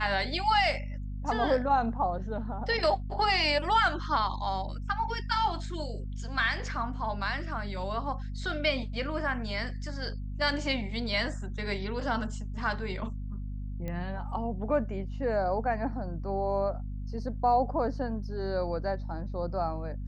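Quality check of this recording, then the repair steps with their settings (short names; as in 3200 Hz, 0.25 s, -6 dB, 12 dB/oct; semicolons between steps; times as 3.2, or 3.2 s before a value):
hum 50 Hz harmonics 5 -36 dBFS
13.88 pop -24 dBFS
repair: de-click; de-hum 50 Hz, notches 5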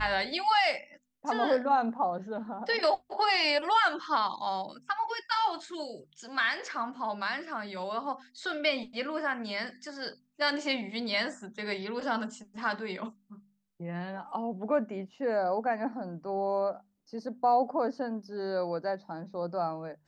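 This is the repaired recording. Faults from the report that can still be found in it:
none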